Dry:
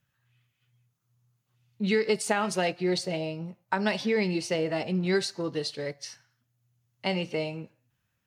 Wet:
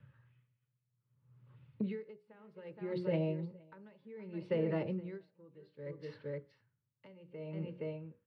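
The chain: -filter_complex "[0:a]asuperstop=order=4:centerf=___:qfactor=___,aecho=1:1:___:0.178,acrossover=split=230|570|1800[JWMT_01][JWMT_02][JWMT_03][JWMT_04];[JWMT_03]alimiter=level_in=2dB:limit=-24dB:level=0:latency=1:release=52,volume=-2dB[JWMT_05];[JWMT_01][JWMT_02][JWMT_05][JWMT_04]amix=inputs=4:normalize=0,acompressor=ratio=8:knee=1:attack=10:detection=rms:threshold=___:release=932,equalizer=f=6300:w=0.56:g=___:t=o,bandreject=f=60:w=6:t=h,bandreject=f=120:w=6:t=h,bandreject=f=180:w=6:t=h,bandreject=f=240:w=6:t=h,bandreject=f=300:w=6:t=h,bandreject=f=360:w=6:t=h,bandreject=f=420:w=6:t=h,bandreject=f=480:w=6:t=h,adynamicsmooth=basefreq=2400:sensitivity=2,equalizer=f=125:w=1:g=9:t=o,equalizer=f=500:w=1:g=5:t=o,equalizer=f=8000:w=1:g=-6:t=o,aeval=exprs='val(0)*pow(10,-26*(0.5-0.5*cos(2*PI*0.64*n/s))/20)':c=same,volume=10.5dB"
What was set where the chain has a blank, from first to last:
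720, 3.6, 469, -40dB, -14.5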